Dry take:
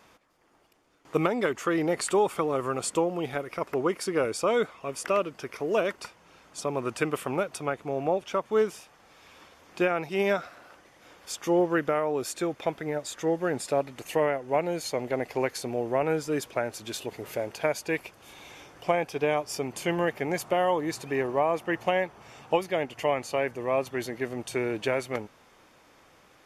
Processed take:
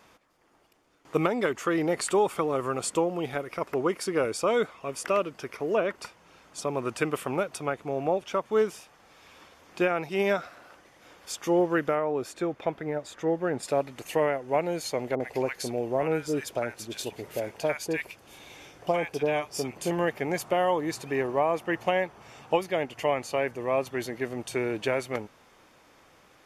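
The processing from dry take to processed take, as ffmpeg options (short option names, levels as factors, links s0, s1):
-filter_complex "[0:a]asettb=1/sr,asplit=3[s0][s1][s2];[s0]atrim=end=5.564[s3];[s1]atrim=start=5.56:end=6.02,asetpts=PTS-STARTPTS,afade=t=in:d=0.004:c=qsin,afade=t=out:st=0.456:d=0.004:c=qsin,acrossover=split=2900[s4][s5];[s5]acompressor=threshold=0.002:ratio=4:attack=1:release=60[s6];[s4][s6]amix=inputs=2:normalize=0[s7];[s2]atrim=start=6.016[s8];[s3][s7]acrossfade=d=0.004:c1=hsin:c2=qsin[s9];[s9][s8]acrossfade=d=0.004:c1=qsin:c2=hsin,asettb=1/sr,asplit=3[s10][s11][s12];[s10]atrim=end=11.954[s13];[s11]atrim=start=11.95:end=13.63,asetpts=PTS-STARTPTS,afade=t=in:d=0.004:c=qsin,afade=t=out:st=1.676:d=0.004:c=qsin,highshelf=f=3600:g=-11[s14];[s12]atrim=start=13.626[s15];[s13][s14]acrossfade=d=0.004:c1=hsin:c2=qsin[s16];[s16][s15]acrossfade=d=0.004:c1=qsin:c2=hsin,asettb=1/sr,asplit=3[s17][s18][s19];[s17]atrim=end=15.154[s20];[s18]atrim=start=15.15:end=19.91,asetpts=PTS-STARTPTS,afade=t=in:d=0.004:c=qsin,afade=t=out:st=4.756:d=0.004:c=qsin,acrossover=split=1100[s21][s22];[s22]adelay=50[s23];[s21][s23]amix=inputs=2:normalize=0,atrim=end_sample=209916[s24];[s19]atrim=start=19.906[s25];[s20][s24]acrossfade=d=0.004:c1=hsin:c2=qsin[s26];[s26][s25]acrossfade=d=0.004:c1=qsin:c2=hsin"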